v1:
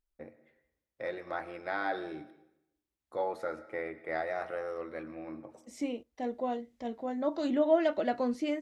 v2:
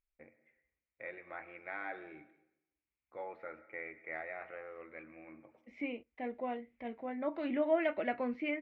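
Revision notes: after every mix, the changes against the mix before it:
second voice +6.0 dB; master: add four-pole ladder low-pass 2.5 kHz, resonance 70%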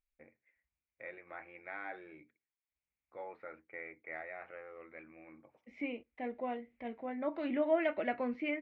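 reverb: off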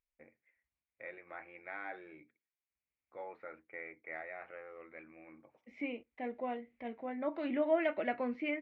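master: add bass shelf 62 Hz -8 dB

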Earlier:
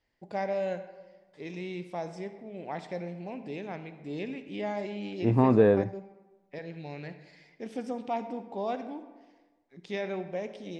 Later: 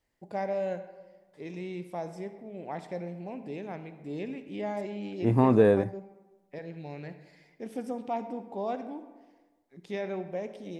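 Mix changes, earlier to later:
first voice: add treble shelf 2.6 kHz -11.5 dB; master: remove distance through air 110 m

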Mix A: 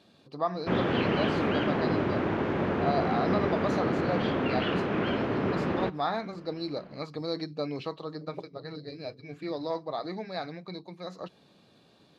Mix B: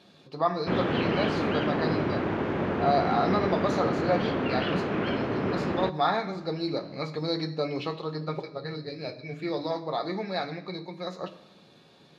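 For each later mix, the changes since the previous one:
reverb: on, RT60 1.0 s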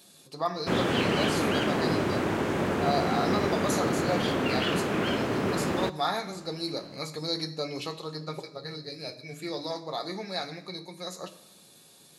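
speech -5.0 dB; master: remove distance through air 260 m

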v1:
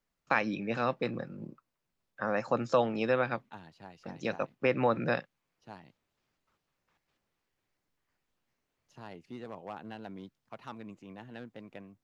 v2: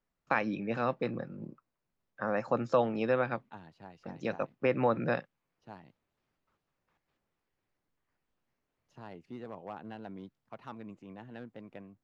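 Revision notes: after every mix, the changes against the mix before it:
master: add treble shelf 2.8 kHz -8.5 dB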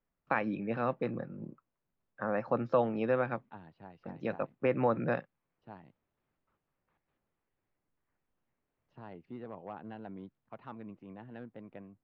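master: add distance through air 290 m

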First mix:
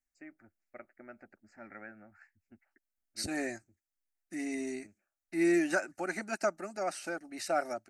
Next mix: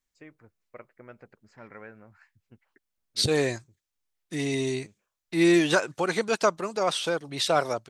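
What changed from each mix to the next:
second voice +5.5 dB; master: remove static phaser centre 690 Hz, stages 8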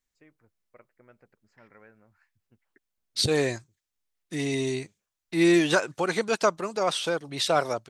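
first voice -9.0 dB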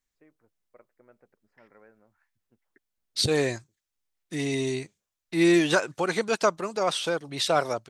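first voice: add band-pass filter 530 Hz, Q 0.51

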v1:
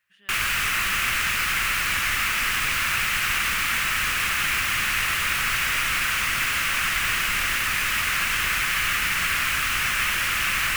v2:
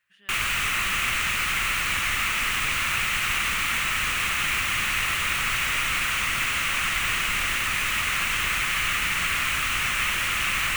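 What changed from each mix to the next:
background: add graphic EQ with 31 bands 1.6 kHz -5 dB, 5 kHz -6 dB, 12.5 kHz -8 dB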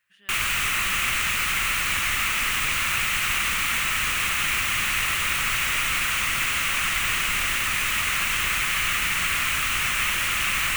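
master: add treble shelf 6.1 kHz +4.5 dB

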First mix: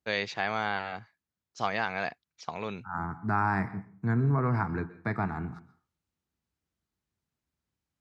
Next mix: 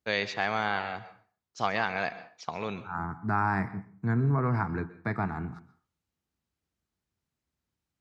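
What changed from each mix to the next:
first voice: send on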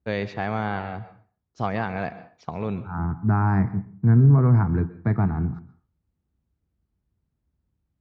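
master: add tilt EQ -4 dB/octave

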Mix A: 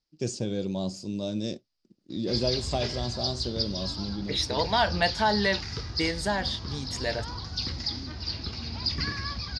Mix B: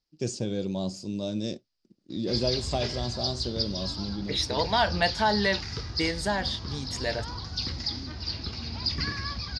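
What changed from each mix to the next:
no change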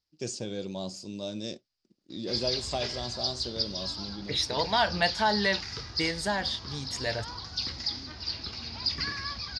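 second voice: add peaking EQ 74 Hz +13 dB 2.2 oct; master: add bass shelf 390 Hz -9 dB

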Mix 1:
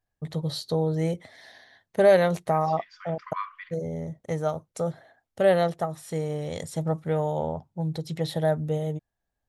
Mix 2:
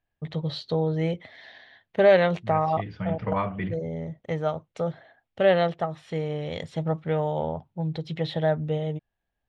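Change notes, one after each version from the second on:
second voice: remove brick-wall FIR high-pass 980 Hz; master: add resonant low-pass 3 kHz, resonance Q 2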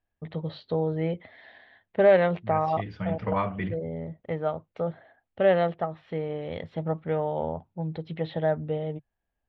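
first voice: add distance through air 350 m; master: add peaking EQ 140 Hz -12.5 dB 0.2 oct

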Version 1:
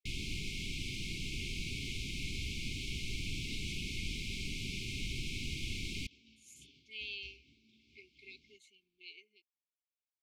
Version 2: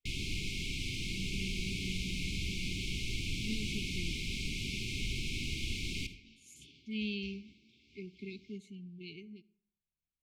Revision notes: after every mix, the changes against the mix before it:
speech: remove high-pass 590 Hz 24 dB/octave; reverb: on, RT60 0.65 s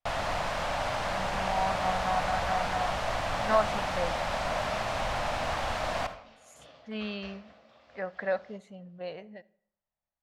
master: remove brick-wall FIR band-stop 420–2100 Hz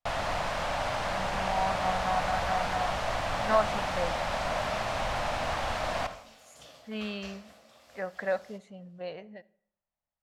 second sound: remove Gaussian low-pass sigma 2 samples

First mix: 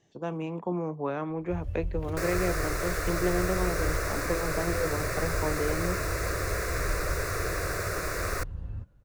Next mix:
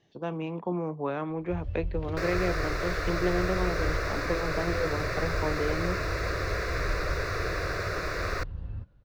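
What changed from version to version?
master: add resonant high shelf 6.2 kHz -13.5 dB, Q 1.5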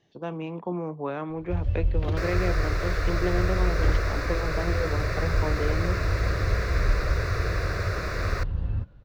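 first sound +9.0 dB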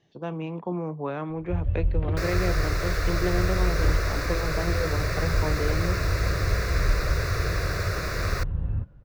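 first sound: add distance through air 390 m; second sound: add treble shelf 6.2 kHz +12 dB; master: add peaking EQ 150 Hz +4 dB 0.38 oct

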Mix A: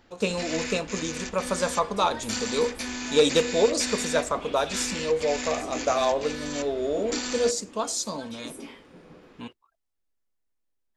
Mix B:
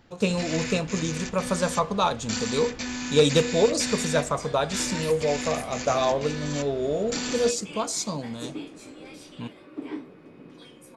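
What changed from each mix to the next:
second sound: entry +2.80 s; master: add peaking EQ 140 Hz +14 dB 0.69 oct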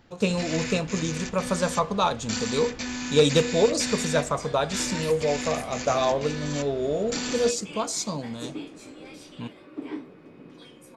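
master: add peaking EQ 10 kHz -3 dB 0.35 oct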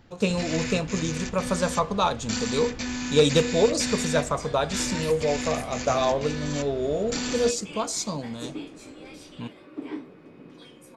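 first sound: add bass shelf 170 Hz +6 dB

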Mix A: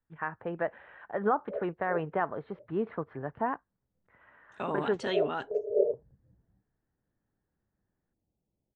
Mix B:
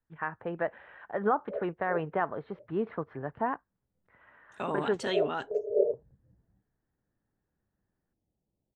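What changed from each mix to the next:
master: remove distance through air 75 m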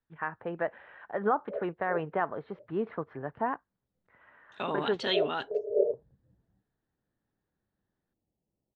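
second voice: add resonant low-pass 3.8 kHz, resonance Q 2.8; master: add bass shelf 110 Hz -5.5 dB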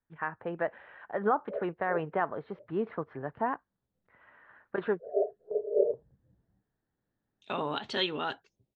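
second voice: entry +2.90 s

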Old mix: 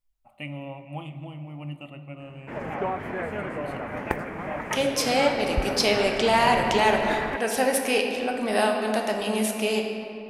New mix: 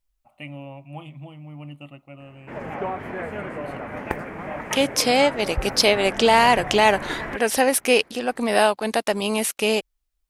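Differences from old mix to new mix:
second voice +9.0 dB; reverb: off

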